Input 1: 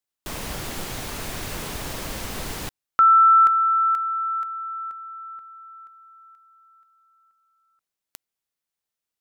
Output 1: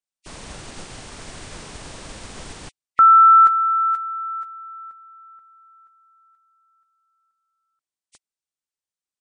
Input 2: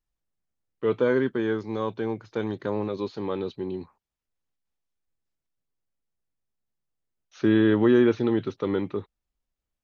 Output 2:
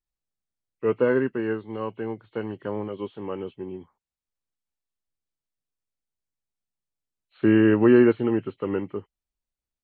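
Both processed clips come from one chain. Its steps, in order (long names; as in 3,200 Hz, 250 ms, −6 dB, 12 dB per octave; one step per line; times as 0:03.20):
hearing-aid frequency compression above 1,900 Hz 1.5 to 1
expander for the loud parts 1.5 to 1, over −36 dBFS
level +3.5 dB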